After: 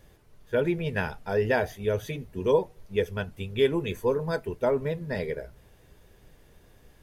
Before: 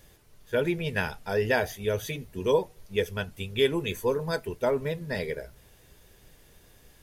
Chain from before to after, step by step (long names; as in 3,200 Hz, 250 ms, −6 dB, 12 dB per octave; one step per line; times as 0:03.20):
high-shelf EQ 2,500 Hz −9.5 dB
level +1.5 dB